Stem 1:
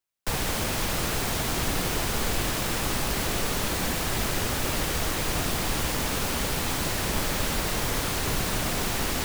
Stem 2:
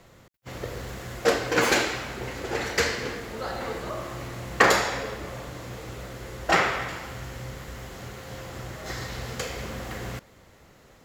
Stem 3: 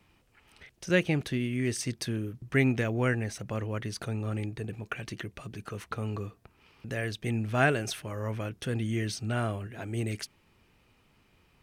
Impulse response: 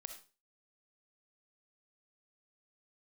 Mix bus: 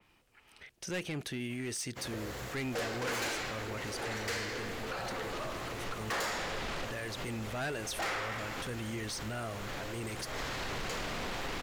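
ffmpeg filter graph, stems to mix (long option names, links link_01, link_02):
-filter_complex "[0:a]lowpass=3800,adelay=2450,volume=-1.5dB[link_01];[1:a]adelay=1500,volume=-1.5dB[link_02];[2:a]adynamicequalizer=threshold=0.00447:dfrequency=4300:dqfactor=0.7:tfrequency=4300:tqfactor=0.7:attack=5:release=100:ratio=0.375:range=2:mode=boostabove:tftype=highshelf,volume=0dB,asplit=2[link_03][link_04];[link_04]apad=whole_len=515574[link_05];[link_01][link_05]sidechaincompress=threshold=-47dB:ratio=8:attack=16:release=136[link_06];[link_06][link_02][link_03]amix=inputs=3:normalize=0,equalizer=frequency=79:width=0.3:gain=-7.5,asoftclip=type=tanh:threshold=-27dB,alimiter=level_in=7.5dB:limit=-24dB:level=0:latency=1:release=48,volume=-7.5dB"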